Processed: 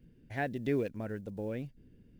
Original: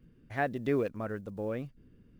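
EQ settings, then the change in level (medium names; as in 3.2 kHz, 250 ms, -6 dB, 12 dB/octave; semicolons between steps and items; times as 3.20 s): dynamic bell 640 Hz, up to -4 dB, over -40 dBFS, Q 0.94; peaking EQ 1.2 kHz -13.5 dB 0.4 oct; 0.0 dB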